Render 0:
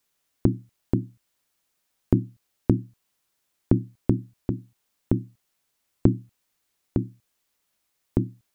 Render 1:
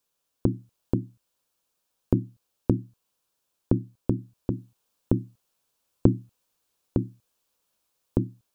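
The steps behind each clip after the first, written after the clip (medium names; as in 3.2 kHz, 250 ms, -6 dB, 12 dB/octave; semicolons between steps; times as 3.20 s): graphic EQ with 31 bands 500 Hz +6 dB, 1 kHz +3 dB, 2 kHz -9 dB; in parallel at -1 dB: gain riding 0.5 s; on the sum: trim -9 dB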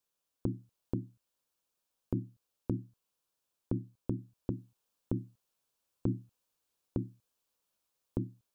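peak limiter -10.5 dBFS, peak gain reduction 9 dB; trim -7 dB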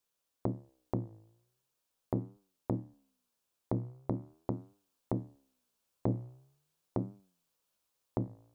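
self-modulated delay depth 0.9 ms; flange 0.42 Hz, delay 9.8 ms, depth 8.8 ms, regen +86%; trim +6 dB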